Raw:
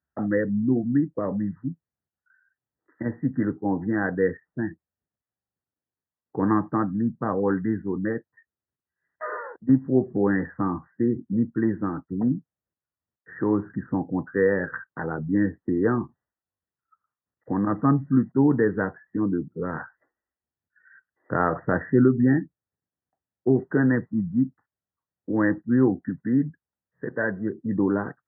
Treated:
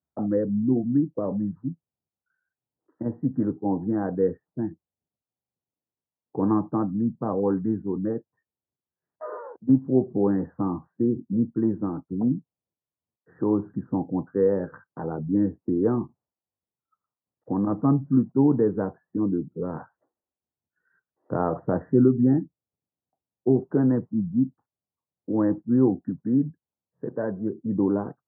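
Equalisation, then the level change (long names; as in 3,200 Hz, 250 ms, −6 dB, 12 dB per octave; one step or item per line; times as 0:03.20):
high-pass filter 83 Hz
low-pass filter 1,000 Hz 24 dB per octave
0.0 dB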